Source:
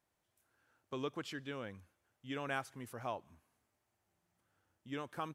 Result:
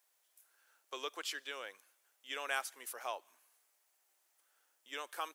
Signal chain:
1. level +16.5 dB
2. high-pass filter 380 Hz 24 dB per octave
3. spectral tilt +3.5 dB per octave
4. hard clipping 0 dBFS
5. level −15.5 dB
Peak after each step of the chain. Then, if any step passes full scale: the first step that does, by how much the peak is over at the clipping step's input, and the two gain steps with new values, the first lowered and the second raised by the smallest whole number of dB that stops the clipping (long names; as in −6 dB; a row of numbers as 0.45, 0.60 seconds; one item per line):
−7.0, −7.0, −4.5, −4.5, −20.0 dBFS
no step passes full scale